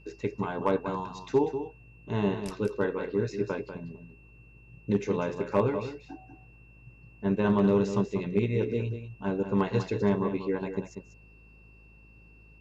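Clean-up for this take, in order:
clipped peaks rebuilt −14.5 dBFS
hum removal 53.2 Hz, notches 10
notch filter 2,700 Hz, Q 30
echo removal 192 ms −9.5 dB

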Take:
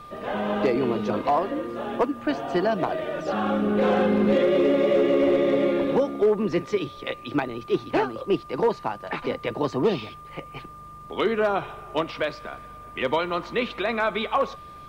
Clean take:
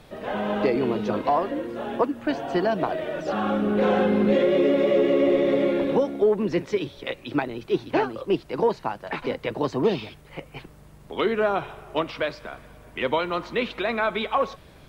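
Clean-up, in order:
clipped peaks rebuilt −14 dBFS
notch filter 1,200 Hz, Q 30

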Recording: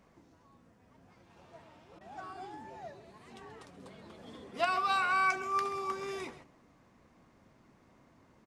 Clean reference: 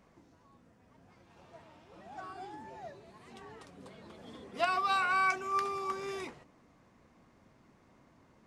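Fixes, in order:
repair the gap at 0:01.99, 17 ms
echo removal 132 ms −15.5 dB

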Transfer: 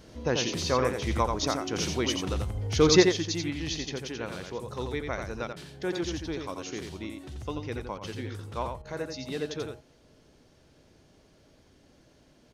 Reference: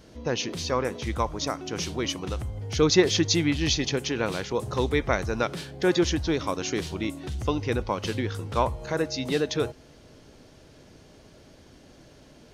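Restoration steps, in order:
repair the gap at 0:05.53/0:07.98/0:08.82, 32 ms
echo removal 87 ms −5.5 dB
level correction +9 dB, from 0:03.03

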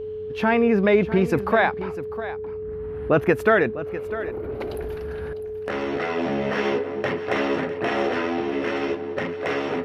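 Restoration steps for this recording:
hum removal 93.8 Hz, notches 3
notch filter 430 Hz, Q 30
echo removal 651 ms −14 dB

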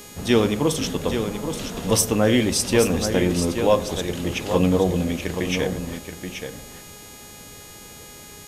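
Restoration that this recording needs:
hum removal 413.9 Hz, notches 34
notch filter 6,700 Hz, Q 30
echo removal 827 ms −8 dB

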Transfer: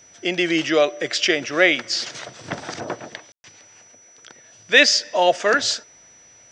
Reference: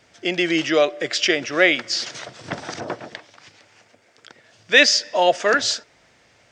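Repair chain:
notch filter 5,900 Hz, Q 30
ambience match 0:03.32–0:03.44

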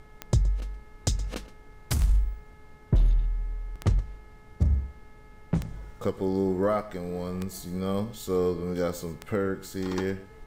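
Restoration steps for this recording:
click removal
hum removal 425.8 Hz, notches 5
noise reduction from a noise print 21 dB
echo removal 120 ms −18.5 dB

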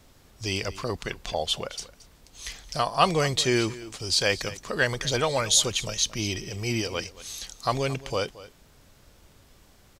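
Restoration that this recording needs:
echo removal 224 ms −17.5 dB

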